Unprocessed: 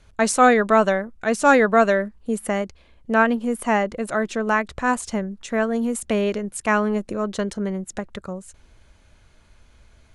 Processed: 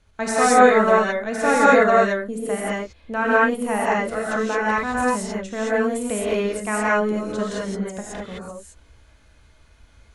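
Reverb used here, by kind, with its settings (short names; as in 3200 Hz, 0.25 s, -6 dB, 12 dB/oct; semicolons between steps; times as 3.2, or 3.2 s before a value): non-linear reverb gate 0.24 s rising, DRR -7.5 dB; gain -7 dB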